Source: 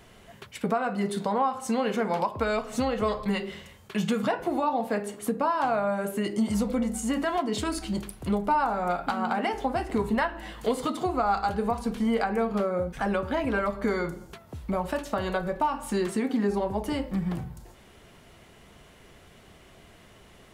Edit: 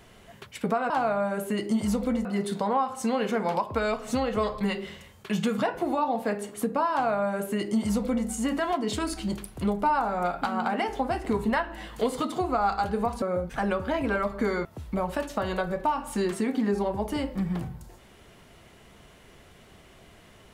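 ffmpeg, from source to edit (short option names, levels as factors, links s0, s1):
-filter_complex "[0:a]asplit=5[s0][s1][s2][s3][s4];[s0]atrim=end=0.902[s5];[s1]atrim=start=5.568:end=6.922[s6];[s2]atrim=start=0.898:end=11.872[s7];[s3]atrim=start=12.648:end=14.082[s8];[s4]atrim=start=14.408[s9];[s5][s6]acrossfade=d=0.004:c1=hsin:c2=hsin[s10];[s10][s7]acrossfade=d=0.004:c1=hsin:c2=hsin[s11];[s11][s8]acrossfade=d=0.004:c1=hsin:c2=hsin[s12];[s12][s9]acrossfade=d=0.004:c1=hsin:c2=hsin"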